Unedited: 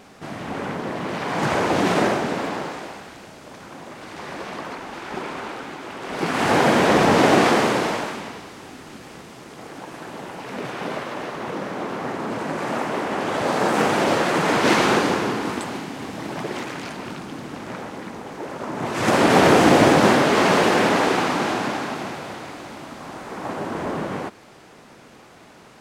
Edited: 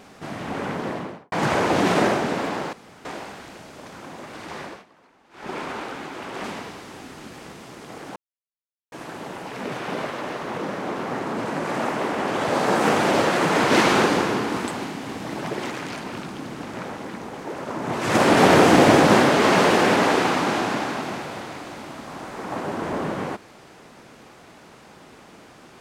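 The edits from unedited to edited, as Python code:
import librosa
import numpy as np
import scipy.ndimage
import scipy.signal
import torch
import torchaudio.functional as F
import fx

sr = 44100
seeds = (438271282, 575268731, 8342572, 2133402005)

y = fx.studio_fade_out(x, sr, start_s=0.86, length_s=0.46)
y = fx.edit(y, sr, fx.insert_room_tone(at_s=2.73, length_s=0.32),
    fx.fade_down_up(start_s=4.26, length_s=0.99, db=-23.5, fade_s=0.27),
    fx.cut(start_s=6.12, length_s=2.01),
    fx.insert_silence(at_s=9.85, length_s=0.76), tone=tone)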